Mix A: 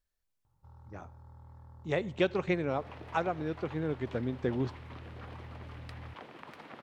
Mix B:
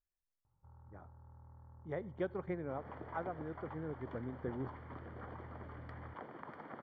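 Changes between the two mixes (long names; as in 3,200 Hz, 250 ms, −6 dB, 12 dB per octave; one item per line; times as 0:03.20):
speech −9.5 dB
first sound −5.0 dB
master: add Savitzky-Golay smoothing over 41 samples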